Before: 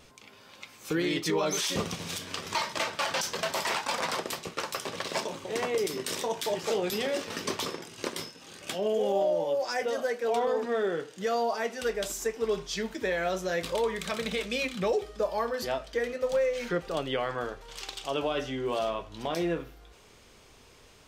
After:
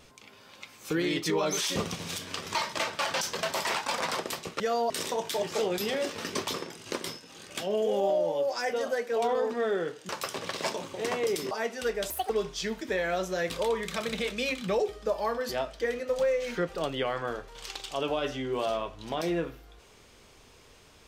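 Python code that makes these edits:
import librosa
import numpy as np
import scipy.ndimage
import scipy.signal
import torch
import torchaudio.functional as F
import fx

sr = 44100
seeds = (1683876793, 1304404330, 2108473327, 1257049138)

y = fx.edit(x, sr, fx.swap(start_s=4.6, length_s=1.42, other_s=11.21, other_length_s=0.3),
    fx.speed_span(start_s=12.1, length_s=0.33, speed=1.67), tone=tone)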